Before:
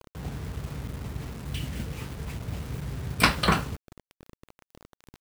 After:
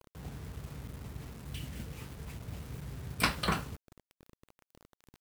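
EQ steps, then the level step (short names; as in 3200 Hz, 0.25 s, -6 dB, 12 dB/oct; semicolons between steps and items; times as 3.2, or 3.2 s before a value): bell 15000 Hz +4 dB 1.3 oct; -8.5 dB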